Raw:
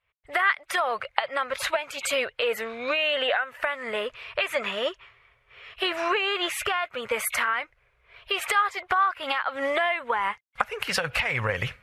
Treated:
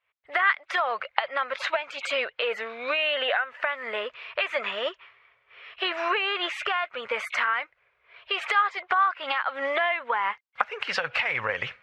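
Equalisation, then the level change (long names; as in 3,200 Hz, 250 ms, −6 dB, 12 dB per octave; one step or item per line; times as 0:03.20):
high-pass filter 680 Hz 6 dB per octave
high-frequency loss of the air 170 metres
+2.5 dB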